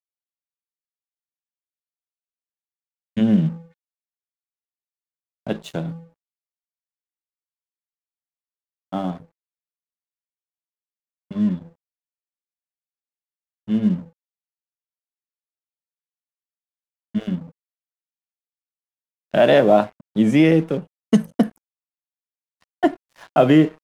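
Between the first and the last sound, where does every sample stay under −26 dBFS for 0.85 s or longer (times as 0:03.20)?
0:03.53–0:05.47
0:05.92–0:08.93
0:09.15–0:11.31
0:11.57–0:13.69
0:14.00–0:17.15
0:17.38–0:19.34
0:21.46–0:22.83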